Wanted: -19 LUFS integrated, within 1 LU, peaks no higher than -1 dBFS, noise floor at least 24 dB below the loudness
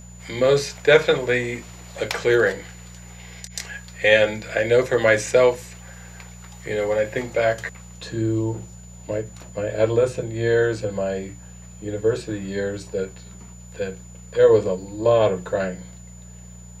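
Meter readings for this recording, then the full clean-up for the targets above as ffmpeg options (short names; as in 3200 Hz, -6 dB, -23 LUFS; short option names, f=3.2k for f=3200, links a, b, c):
hum 60 Hz; harmonics up to 180 Hz; hum level -40 dBFS; steady tone 7000 Hz; tone level -47 dBFS; loudness -21.5 LUFS; peak -1.5 dBFS; loudness target -19.0 LUFS
-> -af "bandreject=f=60:t=h:w=4,bandreject=f=120:t=h:w=4,bandreject=f=180:t=h:w=4"
-af "bandreject=f=7k:w=30"
-af "volume=2.5dB,alimiter=limit=-1dB:level=0:latency=1"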